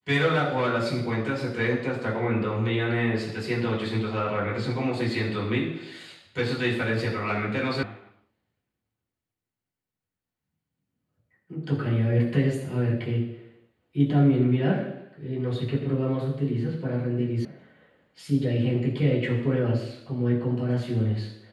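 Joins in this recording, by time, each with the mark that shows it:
7.83 s: sound stops dead
17.45 s: sound stops dead

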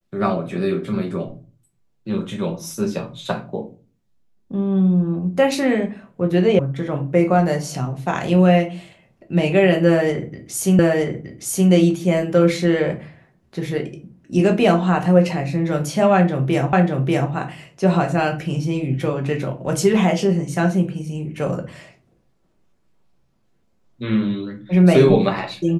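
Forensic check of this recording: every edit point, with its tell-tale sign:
6.59 s: sound stops dead
10.79 s: repeat of the last 0.92 s
16.73 s: repeat of the last 0.59 s

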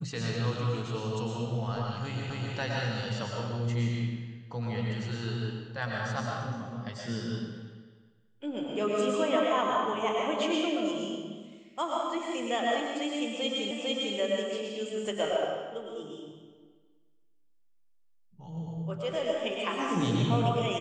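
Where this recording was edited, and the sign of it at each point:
2.30 s: repeat of the last 0.26 s
13.71 s: repeat of the last 0.45 s

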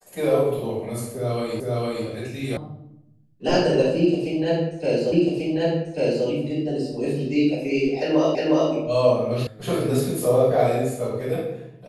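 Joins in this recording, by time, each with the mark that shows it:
1.60 s: repeat of the last 0.46 s
2.57 s: sound stops dead
5.12 s: repeat of the last 1.14 s
8.35 s: repeat of the last 0.36 s
9.47 s: sound stops dead

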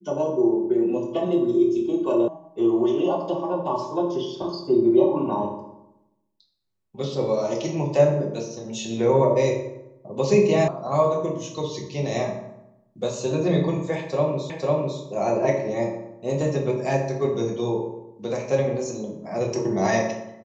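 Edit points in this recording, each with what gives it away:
2.28 s: sound stops dead
10.68 s: sound stops dead
14.50 s: repeat of the last 0.5 s

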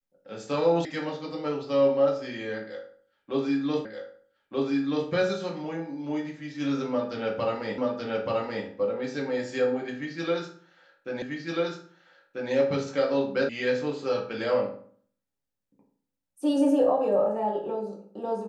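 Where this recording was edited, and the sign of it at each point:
0.85 s: sound stops dead
3.85 s: repeat of the last 1.23 s
7.78 s: repeat of the last 0.88 s
11.22 s: repeat of the last 1.29 s
13.49 s: sound stops dead

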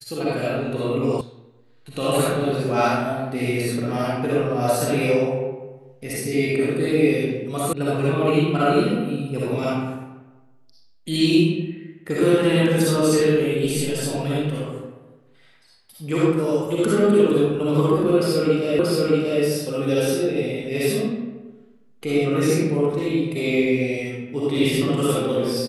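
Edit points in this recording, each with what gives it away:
1.21 s: sound stops dead
7.73 s: sound stops dead
18.79 s: repeat of the last 0.63 s

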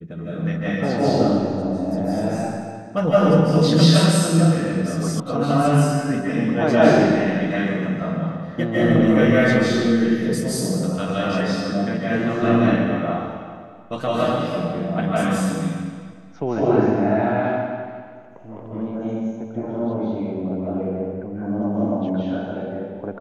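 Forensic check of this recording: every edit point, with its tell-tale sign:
5.20 s: sound stops dead

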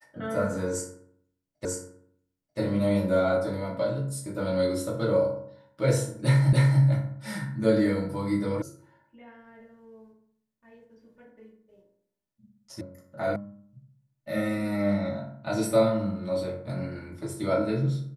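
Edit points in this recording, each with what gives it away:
1.65 s: repeat of the last 0.94 s
6.53 s: repeat of the last 0.29 s
8.62 s: sound stops dead
12.81 s: sound stops dead
13.36 s: sound stops dead

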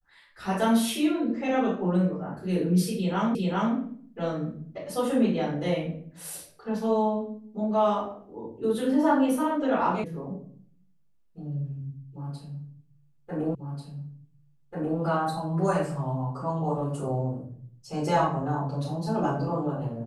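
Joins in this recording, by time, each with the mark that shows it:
3.35 s: repeat of the last 0.4 s
10.04 s: sound stops dead
13.55 s: repeat of the last 1.44 s

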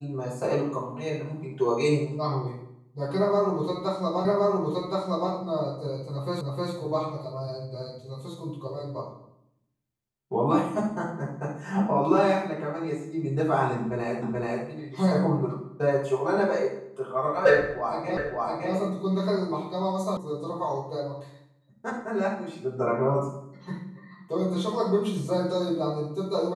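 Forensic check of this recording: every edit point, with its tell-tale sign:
4.25 s: repeat of the last 1.07 s
6.41 s: repeat of the last 0.31 s
14.22 s: repeat of the last 0.43 s
18.17 s: repeat of the last 0.56 s
20.17 s: sound stops dead

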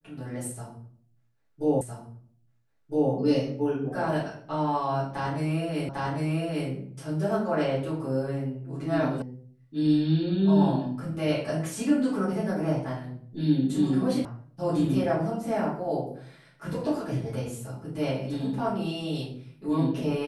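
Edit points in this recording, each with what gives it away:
1.81 s: repeat of the last 1.31 s
5.89 s: repeat of the last 0.8 s
9.22 s: sound stops dead
14.25 s: sound stops dead

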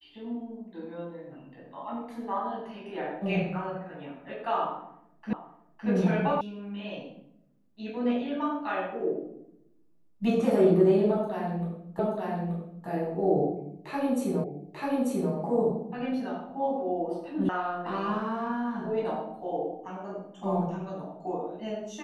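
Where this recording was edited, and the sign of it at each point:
5.33 s: repeat of the last 0.56 s
6.41 s: sound stops dead
11.99 s: repeat of the last 0.88 s
14.44 s: repeat of the last 0.89 s
17.49 s: sound stops dead

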